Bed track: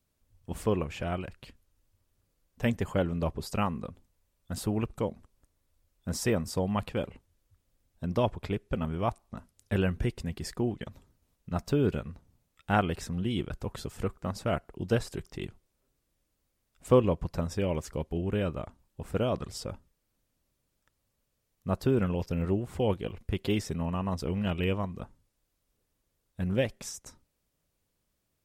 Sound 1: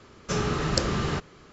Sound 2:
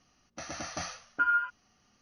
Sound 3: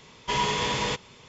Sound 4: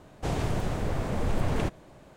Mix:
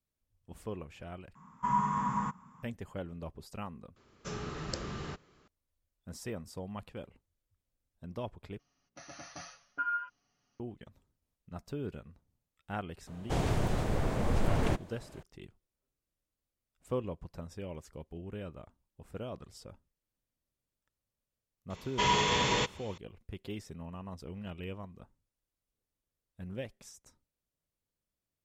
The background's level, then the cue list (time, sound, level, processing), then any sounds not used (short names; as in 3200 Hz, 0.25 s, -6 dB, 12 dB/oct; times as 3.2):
bed track -12.5 dB
1.35 replace with 3 -11.5 dB + EQ curve 110 Hz 0 dB, 180 Hz +15 dB, 250 Hz +9 dB, 380 Hz -11 dB, 580 Hz -10 dB, 1100 Hz +15 dB, 1600 Hz +2 dB, 2400 Hz -14 dB, 4200 Hz -25 dB, 8200 Hz 0 dB
3.96 replace with 1 -13 dB
8.59 replace with 2 -10.5 dB + comb 7.1 ms, depth 52%
13.07 add 4 -1.5 dB
21.7 add 3 -1.5 dB + notch 4900 Hz, Q 13